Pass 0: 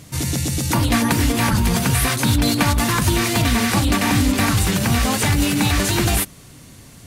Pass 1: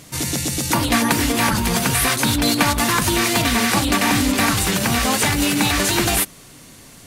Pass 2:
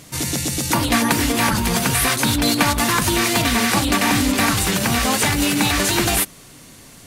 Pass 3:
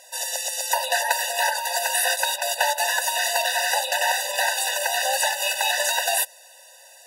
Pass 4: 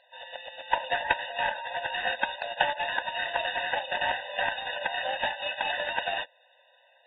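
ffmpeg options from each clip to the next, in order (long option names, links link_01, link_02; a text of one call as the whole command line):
ffmpeg -i in.wav -af "equalizer=frequency=79:width=0.54:gain=-10,volume=2.5dB" out.wav
ffmpeg -i in.wav -af anull out.wav
ffmpeg -i in.wav -filter_complex "[0:a]acrossover=split=220|590|3000[link_01][link_02][link_03][link_04];[link_01]acompressor=threshold=-32dB:ratio=12[link_05];[link_05][link_02][link_03][link_04]amix=inputs=4:normalize=0,afftfilt=real='re*eq(mod(floor(b*sr/1024/500),2),1)':imag='im*eq(mod(floor(b*sr/1024/500),2),1)':win_size=1024:overlap=0.75" out.wav
ffmpeg -i in.wav -af "aeval=exprs='0.531*(cos(1*acos(clip(val(0)/0.531,-1,1)))-cos(1*PI/2))+0.119*(cos(3*acos(clip(val(0)/0.531,-1,1)))-cos(3*PI/2))+0.00376*(cos(5*acos(clip(val(0)/0.531,-1,1)))-cos(5*PI/2))+0.00944*(cos(7*acos(clip(val(0)/0.531,-1,1)))-cos(7*PI/2))':channel_layout=same,volume=2.5dB" -ar 32000 -c:a aac -b:a 16k out.aac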